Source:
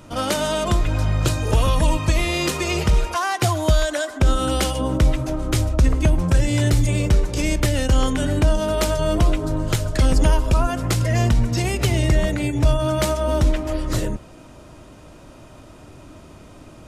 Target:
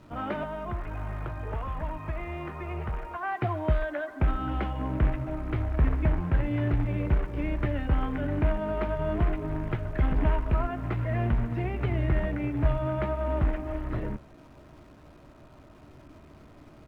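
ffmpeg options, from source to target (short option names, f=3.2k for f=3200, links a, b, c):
-filter_complex "[0:a]acrusher=bits=3:mode=log:mix=0:aa=0.000001,asettb=1/sr,asplit=3[a][b][c];[a]atrim=end=0.434[d];[b]atrim=start=0.43:end=3.23,asetpts=PTS-STARTPTS,afade=t=in:d=0.004:c=qsin,afade=t=out:st=2.796:d=0.004:c=qsin,acrossover=split=110|250|590|1700[e][f][g][h][i];[e]acompressor=threshold=-24dB:ratio=4[j];[f]acompressor=threshold=-39dB:ratio=4[k];[g]acompressor=threshold=-38dB:ratio=4[l];[h]acompressor=threshold=-28dB:ratio=4[m];[i]acompressor=threshold=-36dB:ratio=4[n];[j][k][l][m][n]amix=inputs=5:normalize=0[o];[c]atrim=start=3.226[p];[d][o]acrossfade=d=0.004:c1=hsin:c2=qsin[q];[q][p]acrossfade=d=0.004:c1=qsin:c2=hsin,lowpass=f=2.3k:w=0.5412,lowpass=f=2.3k:w=1.3066,asplit=2[r][s];[s]adelay=14,volume=-12dB[t];[r][t]amix=inputs=2:normalize=0,acrusher=bits=9:dc=4:mix=0:aa=0.000001,aemphasis=mode=reproduction:type=cd,bandreject=f=520:w=12,volume=-8.5dB"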